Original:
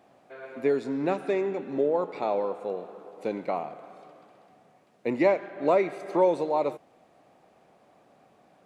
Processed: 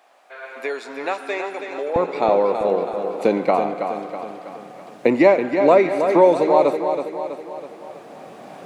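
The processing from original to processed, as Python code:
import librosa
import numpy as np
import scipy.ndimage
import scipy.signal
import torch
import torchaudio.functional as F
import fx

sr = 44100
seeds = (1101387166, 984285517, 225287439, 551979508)

y = fx.recorder_agc(x, sr, target_db=-14.5, rise_db_per_s=5.5, max_gain_db=30)
y = fx.highpass(y, sr, hz=fx.steps((0.0, 840.0), (1.96, 140.0)), slope=12)
y = fx.echo_feedback(y, sr, ms=325, feedback_pct=52, wet_db=-7.5)
y = y * librosa.db_to_amplitude(8.5)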